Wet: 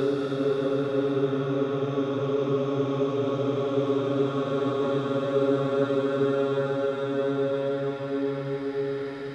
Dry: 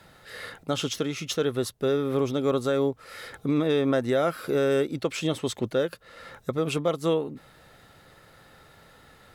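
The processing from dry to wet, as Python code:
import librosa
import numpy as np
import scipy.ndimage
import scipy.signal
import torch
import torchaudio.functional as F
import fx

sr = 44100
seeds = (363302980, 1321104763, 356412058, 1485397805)

y = scipy.signal.sosfilt(scipy.signal.bessel(2, 3500.0, 'lowpass', norm='mag', fs=sr, output='sos'), x)
y = fx.paulstretch(y, sr, seeds[0], factor=7.3, window_s=1.0, from_s=1.86)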